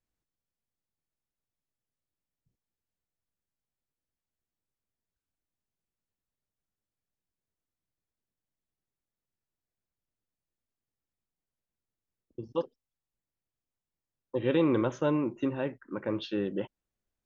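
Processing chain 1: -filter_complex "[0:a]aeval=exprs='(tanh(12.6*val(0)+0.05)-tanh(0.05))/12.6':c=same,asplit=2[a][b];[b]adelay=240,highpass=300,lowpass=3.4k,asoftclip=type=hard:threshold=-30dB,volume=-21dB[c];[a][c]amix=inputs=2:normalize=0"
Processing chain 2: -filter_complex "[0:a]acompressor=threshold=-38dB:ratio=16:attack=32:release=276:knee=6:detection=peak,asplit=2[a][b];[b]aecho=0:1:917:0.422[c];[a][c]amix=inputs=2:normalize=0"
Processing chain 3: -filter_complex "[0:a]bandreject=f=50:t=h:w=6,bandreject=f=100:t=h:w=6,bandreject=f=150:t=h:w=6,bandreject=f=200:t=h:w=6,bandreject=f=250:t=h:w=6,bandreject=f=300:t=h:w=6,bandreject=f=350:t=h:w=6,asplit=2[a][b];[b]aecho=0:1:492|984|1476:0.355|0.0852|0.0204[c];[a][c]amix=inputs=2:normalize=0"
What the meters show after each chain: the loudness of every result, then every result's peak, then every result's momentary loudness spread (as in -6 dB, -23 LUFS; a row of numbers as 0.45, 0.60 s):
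-33.0, -42.5, -31.5 LUFS; -21.5, -22.5, -15.5 dBFS; 14, 11, 18 LU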